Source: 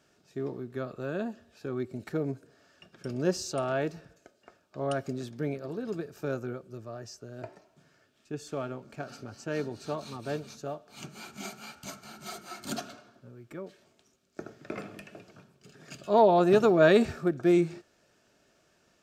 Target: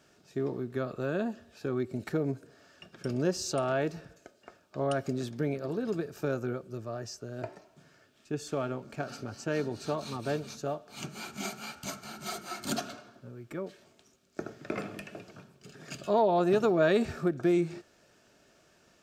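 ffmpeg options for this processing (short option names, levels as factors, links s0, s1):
-af "acompressor=threshold=0.0282:ratio=2,volume=1.5"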